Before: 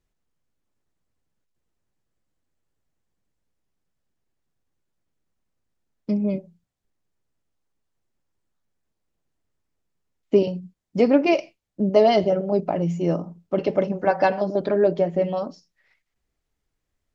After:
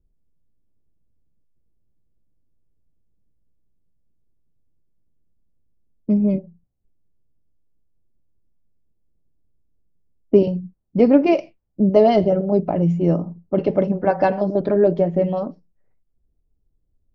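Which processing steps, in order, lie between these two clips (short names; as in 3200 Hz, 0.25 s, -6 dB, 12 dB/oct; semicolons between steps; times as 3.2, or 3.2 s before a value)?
low-pass opened by the level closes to 500 Hz, open at -17.5 dBFS; tilt -2.5 dB/oct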